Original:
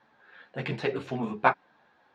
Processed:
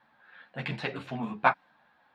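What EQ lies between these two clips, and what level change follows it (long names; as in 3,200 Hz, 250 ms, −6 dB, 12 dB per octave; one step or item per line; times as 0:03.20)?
graphic EQ with 15 bands 100 Hz −4 dB, 400 Hz −11 dB, 6,300 Hz −8 dB
dynamic equaliser 6,300 Hz, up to +5 dB, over −51 dBFS, Q 0.83
0.0 dB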